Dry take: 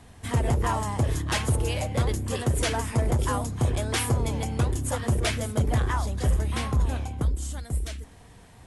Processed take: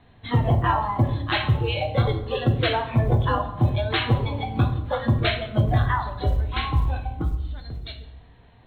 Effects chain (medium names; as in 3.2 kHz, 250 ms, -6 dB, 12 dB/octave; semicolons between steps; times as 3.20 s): spectral noise reduction 13 dB; Chebyshev low-pass 4.2 kHz, order 10; in parallel at -1 dB: compression 4:1, threshold -40 dBFS, peak gain reduction 16.5 dB; on the sum: short-mantissa float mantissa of 6-bit; reverberation RT60 0.90 s, pre-delay 4 ms, DRR 6 dB; trim +3.5 dB